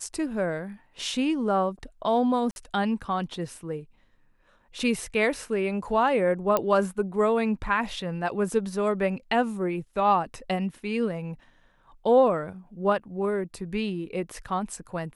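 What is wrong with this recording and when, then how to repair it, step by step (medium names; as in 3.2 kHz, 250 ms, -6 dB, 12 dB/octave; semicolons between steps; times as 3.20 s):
2.51–2.56 s: dropout 51 ms
6.57 s: pop -10 dBFS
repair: de-click; interpolate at 2.51 s, 51 ms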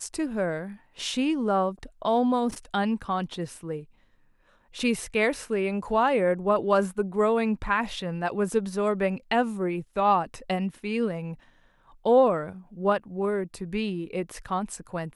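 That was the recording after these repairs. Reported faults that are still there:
nothing left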